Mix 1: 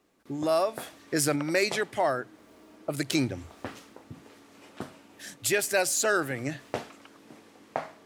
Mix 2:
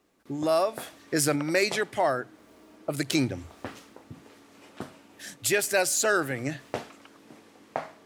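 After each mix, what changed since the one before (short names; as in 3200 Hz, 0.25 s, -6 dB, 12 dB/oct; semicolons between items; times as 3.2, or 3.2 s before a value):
reverb: on, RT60 0.50 s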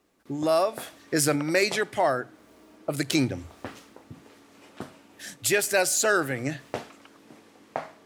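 speech: send +7.5 dB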